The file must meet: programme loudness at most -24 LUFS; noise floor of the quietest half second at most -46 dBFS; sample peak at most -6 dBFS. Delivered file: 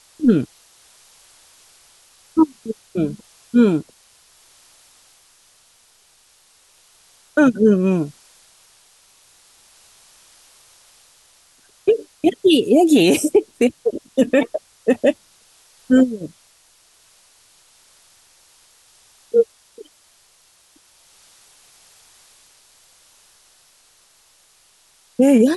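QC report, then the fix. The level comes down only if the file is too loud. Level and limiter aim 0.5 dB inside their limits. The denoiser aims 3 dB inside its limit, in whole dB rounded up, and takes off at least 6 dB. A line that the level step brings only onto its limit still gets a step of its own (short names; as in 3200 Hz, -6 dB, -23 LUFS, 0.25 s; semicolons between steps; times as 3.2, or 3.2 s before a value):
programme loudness -18.0 LUFS: fail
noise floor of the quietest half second -56 dBFS: OK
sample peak -5.0 dBFS: fail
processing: gain -6.5 dB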